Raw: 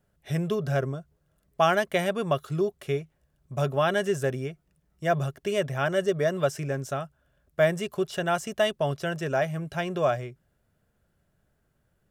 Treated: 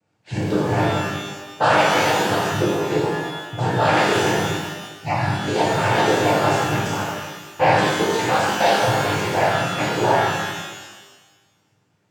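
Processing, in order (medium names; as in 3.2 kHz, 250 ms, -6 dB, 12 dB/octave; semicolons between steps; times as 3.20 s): noise-vocoded speech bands 8; 4.31–5.24 s: static phaser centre 2.3 kHz, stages 8; pitch-shifted reverb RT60 1.3 s, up +12 st, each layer -8 dB, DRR -7 dB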